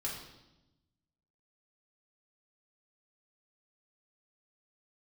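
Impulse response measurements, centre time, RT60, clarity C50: 43 ms, 0.95 s, 4.0 dB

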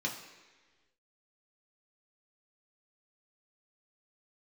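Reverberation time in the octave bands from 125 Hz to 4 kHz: 1.3 s, 1.4 s, 1.5 s, 1.3 s, 1.5 s, 1.3 s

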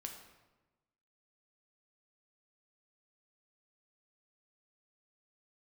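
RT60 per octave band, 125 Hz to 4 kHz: 1.3 s, 1.3 s, 1.2 s, 1.1 s, 0.95 s, 0.80 s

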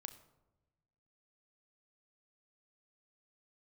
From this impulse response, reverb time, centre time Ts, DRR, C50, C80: 1.1 s, 9 ms, 8.0 dB, 13.5 dB, 15.0 dB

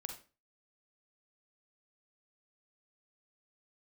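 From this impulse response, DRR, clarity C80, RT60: 4.0 dB, 12.5 dB, 0.35 s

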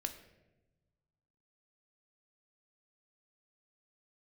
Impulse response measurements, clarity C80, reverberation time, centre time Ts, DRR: 13.0 dB, 1.1 s, 13 ms, 6.0 dB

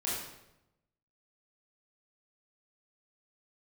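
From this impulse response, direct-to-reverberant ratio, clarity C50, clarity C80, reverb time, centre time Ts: -7.5 dB, 0.0 dB, 3.5 dB, 0.90 s, 67 ms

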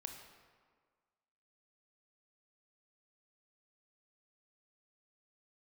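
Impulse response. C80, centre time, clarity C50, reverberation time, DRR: 7.0 dB, 39 ms, 5.5 dB, 1.7 s, 4.0 dB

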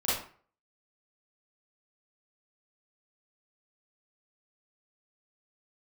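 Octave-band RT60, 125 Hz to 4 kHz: 0.45 s, 0.45 s, 0.45 s, 0.45 s, 0.40 s, 0.30 s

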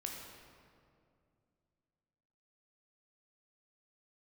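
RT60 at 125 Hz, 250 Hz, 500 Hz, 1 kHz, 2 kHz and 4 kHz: 3.2 s, 3.0 s, 2.6 s, 2.1 s, 1.7 s, 1.4 s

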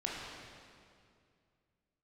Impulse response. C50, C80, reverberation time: -1.0 dB, 0.5 dB, 2.3 s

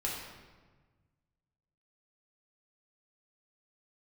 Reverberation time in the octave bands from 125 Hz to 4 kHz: 2.2 s, 1.7 s, 1.4 s, 1.3 s, 1.2 s, 0.95 s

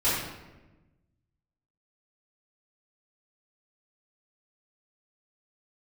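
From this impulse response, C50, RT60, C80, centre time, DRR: 0.0 dB, 1.1 s, 2.5 dB, 72 ms, -12.5 dB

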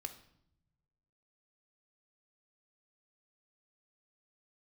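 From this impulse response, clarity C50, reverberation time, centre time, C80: 12.0 dB, 0.75 s, 10 ms, 15.5 dB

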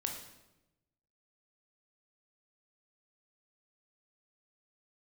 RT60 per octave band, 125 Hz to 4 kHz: 1.4 s, 1.2 s, 1.1 s, 0.90 s, 0.80 s, 0.75 s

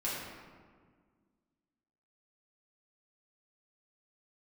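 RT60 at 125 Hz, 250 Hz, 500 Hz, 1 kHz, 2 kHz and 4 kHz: 2.1 s, 2.4 s, 1.8 s, 1.6 s, 1.3 s, 0.95 s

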